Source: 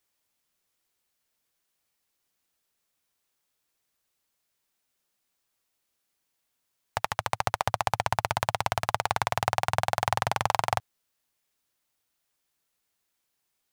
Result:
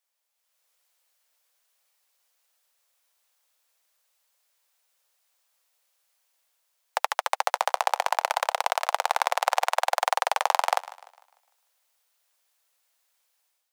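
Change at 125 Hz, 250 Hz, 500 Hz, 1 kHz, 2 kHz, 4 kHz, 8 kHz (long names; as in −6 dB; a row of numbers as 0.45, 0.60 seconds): below −40 dB, below −30 dB, +2.5 dB, +3.0 dB, +2.5 dB, +3.0 dB, +3.5 dB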